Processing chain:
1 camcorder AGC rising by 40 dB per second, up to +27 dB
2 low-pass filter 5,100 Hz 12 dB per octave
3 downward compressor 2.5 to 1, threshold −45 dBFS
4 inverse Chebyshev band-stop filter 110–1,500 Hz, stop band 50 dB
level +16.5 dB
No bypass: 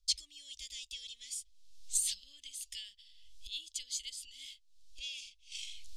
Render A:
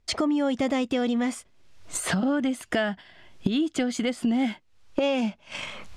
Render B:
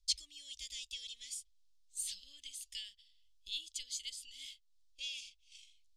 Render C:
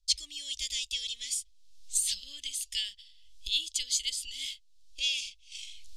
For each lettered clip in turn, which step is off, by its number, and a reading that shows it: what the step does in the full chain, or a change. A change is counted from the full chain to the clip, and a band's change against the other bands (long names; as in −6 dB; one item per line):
4, change in crest factor −9.0 dB
1, change in crest factor +2.0 dB
3, average gain reduction 9.0 dB